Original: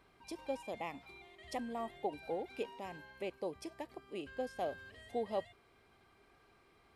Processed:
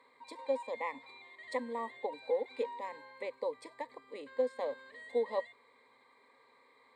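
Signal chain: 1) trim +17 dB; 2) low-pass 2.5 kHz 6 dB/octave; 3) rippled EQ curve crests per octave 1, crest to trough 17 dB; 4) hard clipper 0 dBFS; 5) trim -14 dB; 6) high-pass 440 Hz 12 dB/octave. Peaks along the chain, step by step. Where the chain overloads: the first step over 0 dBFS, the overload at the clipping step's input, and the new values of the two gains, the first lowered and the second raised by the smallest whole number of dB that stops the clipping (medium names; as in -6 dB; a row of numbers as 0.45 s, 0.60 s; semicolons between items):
-7.5 dBFS, -7.5 dBFS, -4.0 dBFS, -4.0 dBFS, -18.0 dBFS, -21.0 dBFS; nothing clips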